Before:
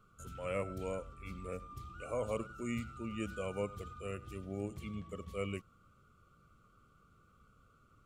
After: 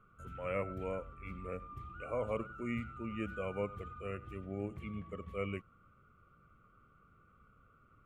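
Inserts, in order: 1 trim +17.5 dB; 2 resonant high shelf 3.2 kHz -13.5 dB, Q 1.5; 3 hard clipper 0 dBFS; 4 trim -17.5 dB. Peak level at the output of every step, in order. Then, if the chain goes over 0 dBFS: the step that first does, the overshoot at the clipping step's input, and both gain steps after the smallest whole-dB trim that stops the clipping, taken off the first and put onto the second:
-6.5 dBFS, -5.5 dBFS, -5.5 dBFS, -23.0 dBFS; nothing clips

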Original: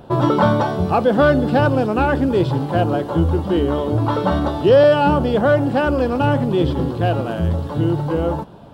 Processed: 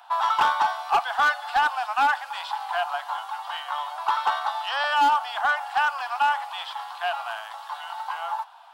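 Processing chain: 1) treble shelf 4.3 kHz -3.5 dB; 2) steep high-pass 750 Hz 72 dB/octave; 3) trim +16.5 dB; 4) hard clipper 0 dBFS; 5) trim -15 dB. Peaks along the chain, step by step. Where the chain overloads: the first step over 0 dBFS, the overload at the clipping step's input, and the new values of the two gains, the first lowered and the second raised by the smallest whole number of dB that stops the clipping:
-3.0 dBFS, -7.5 dBFS, +9.0 dBFS, 0.0 dBFS, -15.0 dBFS; step 3, 9.0 dB; step 3 +7.5 dB, step 5 -6 dB

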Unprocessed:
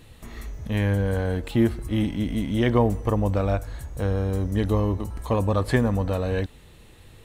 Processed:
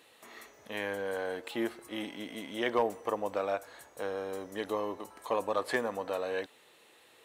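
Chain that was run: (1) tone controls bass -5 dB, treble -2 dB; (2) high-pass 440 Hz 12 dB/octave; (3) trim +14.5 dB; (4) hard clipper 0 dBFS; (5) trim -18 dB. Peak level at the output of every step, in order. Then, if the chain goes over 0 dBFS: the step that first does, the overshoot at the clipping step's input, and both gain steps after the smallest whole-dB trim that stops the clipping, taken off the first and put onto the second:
-8.0 dBFS, -11.0 dBFS, +3.5 dBFS, 0.0 dBFS, -18.0 dBFS; step 3, 3.5 dB; step 3 +10.5 dB, step 5 -14 dB

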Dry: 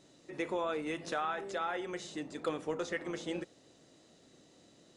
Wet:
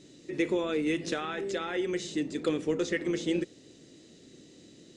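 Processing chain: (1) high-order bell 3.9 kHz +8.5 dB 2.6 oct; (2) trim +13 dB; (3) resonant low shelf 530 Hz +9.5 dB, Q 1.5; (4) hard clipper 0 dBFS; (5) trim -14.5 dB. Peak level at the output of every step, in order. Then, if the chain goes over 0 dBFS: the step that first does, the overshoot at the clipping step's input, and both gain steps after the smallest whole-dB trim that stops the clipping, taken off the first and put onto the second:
-19.0 dBFS, -6.0 dBFS, -2.0 dBFS, -2.0 dBFS, -16.5 dBFS; nothing clips

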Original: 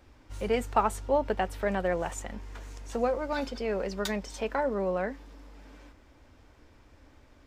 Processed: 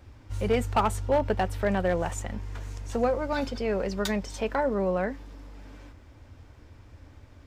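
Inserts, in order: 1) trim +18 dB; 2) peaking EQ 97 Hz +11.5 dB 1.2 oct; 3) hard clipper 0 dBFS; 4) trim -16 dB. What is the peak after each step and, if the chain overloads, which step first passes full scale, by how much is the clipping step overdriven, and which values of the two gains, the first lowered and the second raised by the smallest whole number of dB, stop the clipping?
+7.0 dBFS, +7.0 dBFS, 0.0 dBFS, -16.0 dBFS; step 1, 7.0 dB; step 1 +11 dB, step 4 -9 dB

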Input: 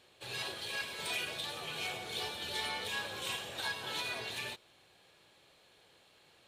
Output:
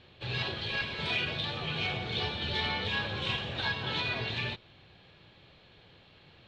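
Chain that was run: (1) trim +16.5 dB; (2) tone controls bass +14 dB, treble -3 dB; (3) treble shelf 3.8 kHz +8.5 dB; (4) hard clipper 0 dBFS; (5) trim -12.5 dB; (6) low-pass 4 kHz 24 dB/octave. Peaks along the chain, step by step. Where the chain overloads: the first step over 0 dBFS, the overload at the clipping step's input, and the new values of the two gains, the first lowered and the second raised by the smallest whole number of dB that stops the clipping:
-8.5 dBFS, -8.5 dBFS, -5.5 dBFS, -5.5 dBFS, -18.0 dBFS, -19.5 dBFS; nothing clips

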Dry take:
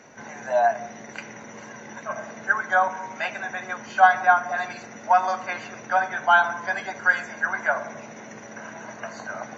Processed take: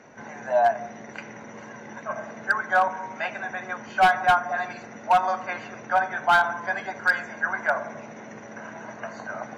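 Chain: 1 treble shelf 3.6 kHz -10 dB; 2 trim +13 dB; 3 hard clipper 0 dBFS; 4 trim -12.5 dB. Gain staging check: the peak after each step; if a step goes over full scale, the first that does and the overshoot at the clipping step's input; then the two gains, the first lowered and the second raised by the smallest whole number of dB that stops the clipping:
-4.0 dBFS, +9.0 dBFS, 0.0 dBFS, -12.5 dBFS; step 2, 9.0 dB; step 2 +4 dB, step 4 -3.5 dB

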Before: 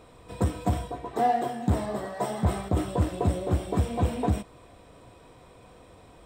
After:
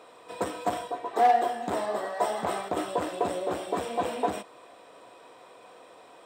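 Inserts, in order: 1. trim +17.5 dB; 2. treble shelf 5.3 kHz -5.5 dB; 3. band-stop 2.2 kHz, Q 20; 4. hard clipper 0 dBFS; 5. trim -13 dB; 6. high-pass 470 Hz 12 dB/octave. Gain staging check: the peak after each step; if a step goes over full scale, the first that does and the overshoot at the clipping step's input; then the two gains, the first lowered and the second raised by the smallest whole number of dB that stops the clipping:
+4.0 dBFS, +4.0 dBFS, +4.0 dBFS, 0.0 dBFS, -13.0 dBFS, -11.0 dBFS; step 1, 4.0 dB; step 1 +13.5 dB, step 5 -9 dB

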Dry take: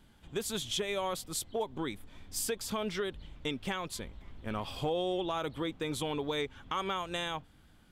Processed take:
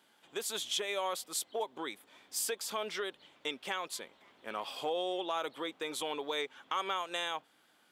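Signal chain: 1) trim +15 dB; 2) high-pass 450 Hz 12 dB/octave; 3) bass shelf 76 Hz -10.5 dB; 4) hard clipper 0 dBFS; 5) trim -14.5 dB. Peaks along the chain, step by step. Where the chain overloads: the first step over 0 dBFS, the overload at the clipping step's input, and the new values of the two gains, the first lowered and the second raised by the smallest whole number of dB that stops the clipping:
-6.5 dBFS, -5.0 dBFS, -5.0 dBFS, -5.0 dBFS, -19.5 dBFS; nothing clips

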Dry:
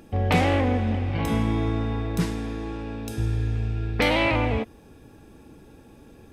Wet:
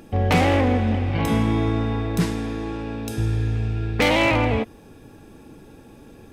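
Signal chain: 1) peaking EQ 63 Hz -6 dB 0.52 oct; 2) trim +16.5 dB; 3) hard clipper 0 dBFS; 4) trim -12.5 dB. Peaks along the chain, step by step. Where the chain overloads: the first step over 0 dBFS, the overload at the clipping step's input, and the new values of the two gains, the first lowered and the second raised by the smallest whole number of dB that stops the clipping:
-10.5 dBFS, +6.0 dBFS, 0.0 dBFS, -12.5 dBFS; step 2, 6.0 dB; step 2 +10.5 dB, step 4 -6.5 dB

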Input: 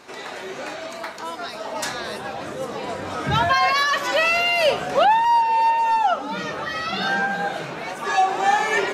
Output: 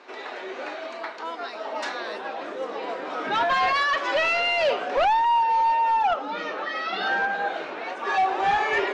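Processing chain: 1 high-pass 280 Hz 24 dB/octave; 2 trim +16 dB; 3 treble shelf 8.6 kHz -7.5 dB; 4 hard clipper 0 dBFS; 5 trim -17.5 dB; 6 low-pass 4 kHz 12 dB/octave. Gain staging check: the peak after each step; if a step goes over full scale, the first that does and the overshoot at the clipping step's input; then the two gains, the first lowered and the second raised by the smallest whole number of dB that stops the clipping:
-7.0 dBFS, +9.0 dBFS, +9.0 dBFS, 0.0 dBFS, -17.5 dBFS, -17.0 dBFS; step 2, 9.0 dB; step 2 +7 dB, step 5 -8.5 dB

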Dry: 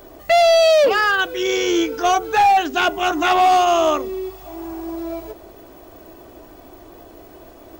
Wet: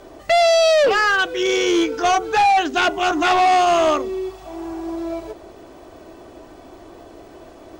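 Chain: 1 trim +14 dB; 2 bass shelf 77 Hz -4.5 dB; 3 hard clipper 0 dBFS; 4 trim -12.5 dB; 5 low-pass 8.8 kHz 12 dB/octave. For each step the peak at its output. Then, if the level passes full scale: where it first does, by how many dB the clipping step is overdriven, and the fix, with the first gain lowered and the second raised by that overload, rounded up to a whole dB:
+5.0 dBFS, +5.0 dBFS, 0.0 dBFS, -12.5 dBFS, -12.0 dBFS; step 1, 5.0 dB; step 1 +9 dB, step 4 -7.5 dB

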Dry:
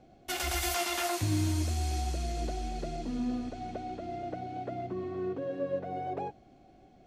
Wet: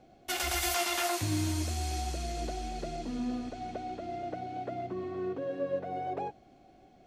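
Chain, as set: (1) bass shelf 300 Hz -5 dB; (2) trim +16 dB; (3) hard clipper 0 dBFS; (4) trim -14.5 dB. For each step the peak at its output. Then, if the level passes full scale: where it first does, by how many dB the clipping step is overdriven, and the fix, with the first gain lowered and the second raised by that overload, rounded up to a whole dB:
-20.0 dBFS, -4.0 dBFS, -4.0 dBFS, -18.5 dBFS; nothing clips

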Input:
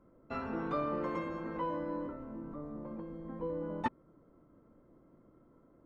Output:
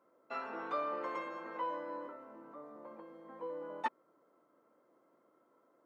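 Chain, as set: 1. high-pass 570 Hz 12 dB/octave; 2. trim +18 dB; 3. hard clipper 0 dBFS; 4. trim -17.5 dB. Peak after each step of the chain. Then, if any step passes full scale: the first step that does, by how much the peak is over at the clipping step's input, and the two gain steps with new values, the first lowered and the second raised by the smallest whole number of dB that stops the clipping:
-23.0 dBFS, -5.0 dBFS, -5.0 dBFS, -22.5 dBFS; nothing clips

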